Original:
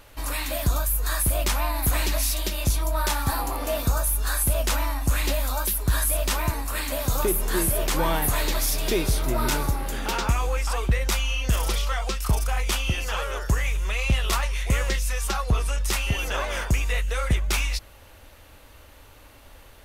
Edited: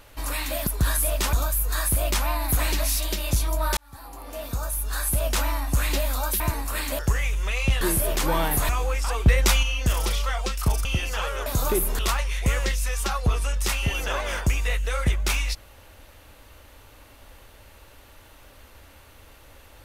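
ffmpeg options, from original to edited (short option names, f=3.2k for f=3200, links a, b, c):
-filter_complex "[0:a]asplit=13[a][b][c][d][e][f][g][h][i][j][k][l][m];[a]atrim=end=0.672[n];[b]atrim=start=5.738:end=6.402[o];[c]atrim=start=0.668:end=3.11,asetpts=PTS-STARTPTS,afade=t=out:st=2.438:d=0.004:c=hsin[p];[d]atrim=start=3.11:end=5.742,asetpts=PTS-STARTPTS,afade=t=in:d=1.61[q];[e]atrim=start=6.398:end=6.992[r];[f]atrim=start=13.408:end=14.232[s];[g]atrim=start=7.518:end=8.402[t];[h]atrim=start=10.318:end=10.892[u];[i]atrim=start=10.888:end=11.262,asetpts=PTS-STARTPTS,volume=5dB[v];[j]atrim=start=11.258:end=12.482[w];[k]atrim=start=12.798:end=13.412[x];[l]atrim=start=6.988:end=7.522[y];[m]atrim=start=14.228[z];[n][o]acrossfade=d=0.004:c1=hsin:c2=hsin[aa];[p][q]concat=n=2:v=0:a=1[ab];[aa][ab]acrossfade=d=0.004:c1=hsin:c2=hsin[ac];[ac][r]acrossfade=d=0.004:c1=hsin:c2=hsin[ad];[ad][s]acrossfade=d=0.004:c1=hsin:c2=hsin[ae];[ae][t]acrossfade=d=0.004:c1=hsin:c2=hsin[af];[af][u]acrossfade=d=0.004:c1=hsin:c2=hsin[ag];[ag][v]acrossfade=d=0.004:c1=hsin:c2=hsin[ah];[ah][w]acrossfade=d=0.004:c1=hsin:c2=hsin[ai];[ai][x]acrossfade=d=0.004:c1=hsin:c2=hsin[aj];[aj][y]acrossfade=d=0.004:c1=hsin:c2=hsin[ak];[ak][z]acrossfade=d=0.004:c1=hsin:c2=hsin"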